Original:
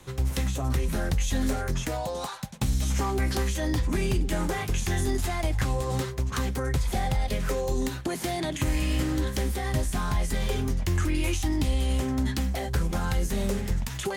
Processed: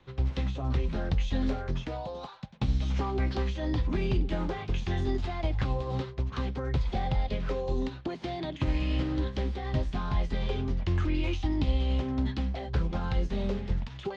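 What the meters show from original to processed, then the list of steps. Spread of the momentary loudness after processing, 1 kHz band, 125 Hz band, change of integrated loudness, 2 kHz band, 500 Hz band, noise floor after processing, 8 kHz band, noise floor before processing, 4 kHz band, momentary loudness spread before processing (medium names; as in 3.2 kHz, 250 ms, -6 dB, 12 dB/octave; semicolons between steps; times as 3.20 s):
5 LU, -4.0 dB, -2.5 dB, -3.0 dB, -7.0 dB, -3.0 dB, -44 dBFS, under -20 dB, -35 dBFS, -6.0 dB, 3 LU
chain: low-pass 4.1 kHz 24 dB/octave; dynamic bell 1.8 kHz, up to -5 dB, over -49 dBFS, Q 1.6; upward expansion 1.5:1, over -39 dBFS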